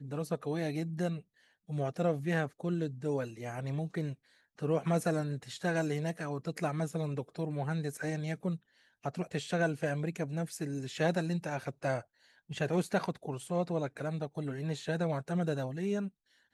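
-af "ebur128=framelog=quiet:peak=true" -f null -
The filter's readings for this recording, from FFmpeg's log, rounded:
Integrated loudness:
  I:         -35.0 LUFS
  Threshold: -45.2 LUFS
Loudness range:
  LRA:         1.4 LU
  Threshold: -55.1 LUFS
  LRA low:   -35.9 LUFS
  LRA high:  -34.5 LUFS
True peak:
  Peak:      -16.8 dBFS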